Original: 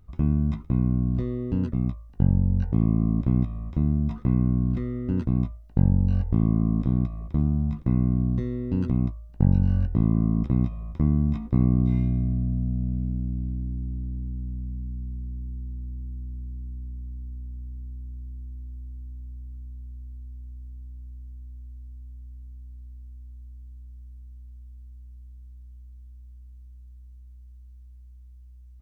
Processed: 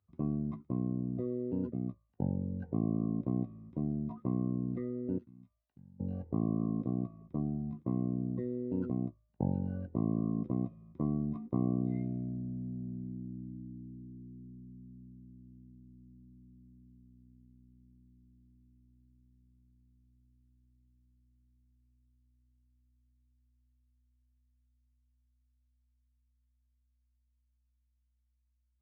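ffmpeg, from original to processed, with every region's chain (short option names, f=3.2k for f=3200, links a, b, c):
-filter_complex "[0:a]asettb=1/sr,asplit=3[a][b][c];[a]atrim=end=5.184[d];[b]atrim=start=5.18:end=6,asetpts=PTS-STARTPTS,afade=t=in:d=0.004:c=qsin,afade=t=out:st=0.816:d=0.004:c=qsin,tiltshelf=f=1.5k:g=-6.5,acompressor=threshold=-46dB:ratio=2.5:attack=3.2:release=140:knee=1:detection=peak[e];[c]atrim=start=5.996[f];[d][e]acrossfade=d=0.004:c1=hsin:c2=qsin[g];[g][f]acrossfade=d=0.004:c1=qsin:c2=hsin,afftdn=nr=21:nf=-38,highpass=f=97:w=0.5412,highpass=f=97:w=1.3066,bass=f=250:g=-14,treble=f=4k:g=-8"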